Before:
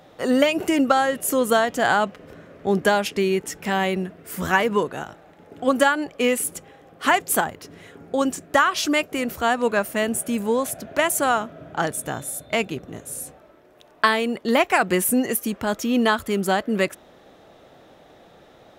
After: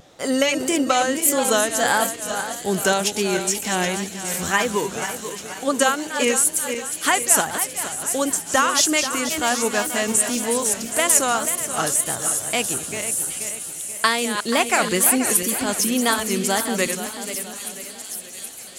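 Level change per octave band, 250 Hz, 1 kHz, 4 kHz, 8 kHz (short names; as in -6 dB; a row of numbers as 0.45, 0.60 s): -1.5, -0.5, +5.0, +11.5 dB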